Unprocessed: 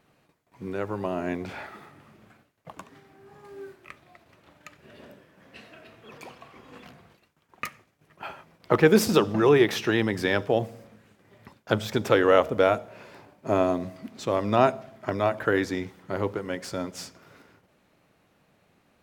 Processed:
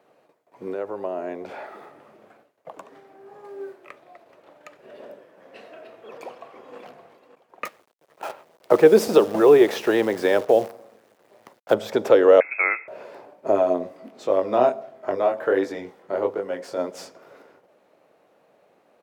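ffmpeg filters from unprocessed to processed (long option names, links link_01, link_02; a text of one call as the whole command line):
ffmpeg -i in.wav -filter_complex "[0:a]asettb=1/sr,asplit=3[link_01][link_02][link_03];[link_01]atrim=end=0.744[link_04];[link_02]atrim=start=0.74:end=3.6,asetpts=PTS-STARTPTS,afade=type=in:duration=0.004:curve=qsin,afade=type=out:start_time=2.856:duration=0.004:curve=qsin,acompressor=threshold=-42dB:ratio=1.5:attack=3.2:release=140:knee=1:detection=peak[link_05];[link_03]atrim=start=3.596[link_06];[link_04][link_05]acrossfade=duration=0.004:curve1=hsin:curve2=qsin[link_07];[link_07][link_06]acrossfade=duration=0.004:curve1=qsin:curve2=hsin,asplit=2[link_08][link_09];[link_09]afade=type=in:start_time=6.22:duration=0.01,afade=type=out:start_time=6.78:duration=0.01,aecho=0:1:570|1140|1710:0.266073|0.0532145|0.0106429[link_10];[link_08][link_10]amix=inputs=2:normalize=0,asettb=1/sr,asplit=3[link_11][link_12][link_13];[link_11]atrim=end=7.654[link_14];[link_12]atrim=start=7.65:end=11.74,asetpts=PTS-STARTPTS,afade=type=in:duration=0.004:curve=qsin,afade=type=out:start_time=4.086:duration=0.004:curve=qsin,acrusher=bits=7:dc=4:mix=0:aa=0.000001[link_15];[link_13]atrim=start=11.736[link_16];[link_14][link_15]acrossfade=duration=0.004:curve1=hsin:curve2=qsin[link_17];[link_17][link_16]acrossfade=duration=0.004:curve1=qsin:curve2=hsin,asettb=1/sr,asplit=3[link_18][link_19][link_20];[link_18]atrim=end=12.404[link_21];[link_19]atrim=start=12.4:end=12.88,asetpts=PTS-STARTPTS,afade=type=in:duration=0.004:curve=qsin,afade=type=out:start_time=0.476:duration=0.004:curve=qsin,lowpass=frequency=2300:width_type=q:width=0.5098,lowpass=frequency=2300:width_type=q:width=0.6013,lowpass=frequency=2300:width_type=q:width=0.9,lowpass=frequency=2300:width_type=q:width=2.563,afreqshift=-2700[link_22];[link_20]atrim=start=12.876[link_23];[link_21][link_22]acrossfade=duration=0.004:curve1=hsin:curve2=qsin[link_24];[link_24][link_23]acrossfade=duration=0.004:curve1=qsin:curve2=hsin,asplit=3[link_25][link_26][link_27];[link_25]afade=type=out:start_time=13.51:duration=0.02[link_28];[link_26]flanger=delay=20:depth=4.1:speed=1.4,afade=type=in:start_time=13.51:duration=0.02,afade=type=out:start_time=16.77:duration=0.02[link_29];[link_27]afade=type=in:start_time=16.77:duration=0.02[link_30];[link_28][link_29][link_30]amix=inputs=3:normalize=0,highpass=frequency=350:poles=1,equalizer=frequency=540:width_type=o:width=1.9:gain=15,acrossover=split=450|3000[link_31][link_32][link_33];[link_32]acompressor=threshold=-17dB:ratio=2[link_34];[link_31][link_34][link_33]amix=inputs=3:normalize=0,volume=-3dB" out.wav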